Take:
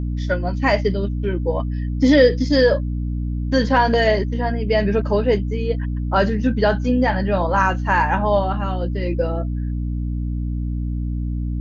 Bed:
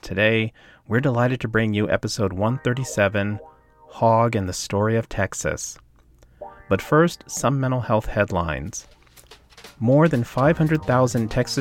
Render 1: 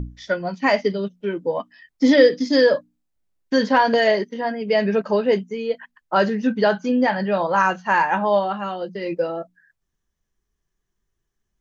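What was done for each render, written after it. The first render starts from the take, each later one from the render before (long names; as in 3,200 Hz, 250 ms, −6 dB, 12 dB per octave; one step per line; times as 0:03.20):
mains-hum notches 60/120/180/240/300 Hz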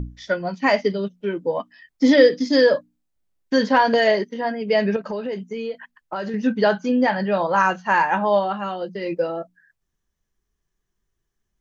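0:04.96–0:06.34: downward compressor, threshold −24 dBFS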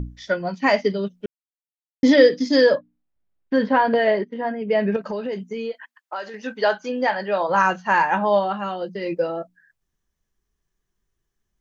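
0:01.26–0:02.03: silence
0:02.75–0:04.95: high-frequency loss of the air 330 metres
0:05.71–0:07.48: high-pass filter 770 Hz → 320 Hz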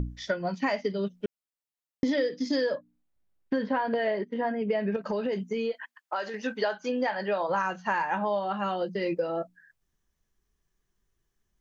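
downward compressor 6 to 1, threshold −25 dBFS, peak gain reduction 15.5 dB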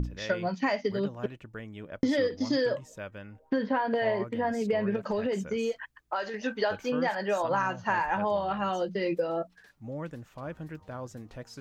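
mix in bed −21.5 dB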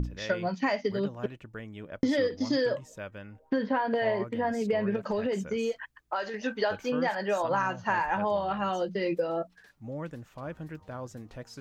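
no processing that can be heard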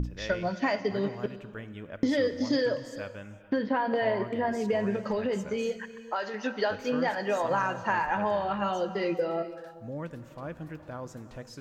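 reverb whose tail is shaped and stops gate 480 ms flat, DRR 11.5 dB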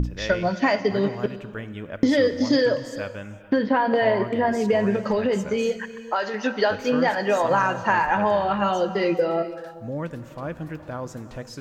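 level +7 dB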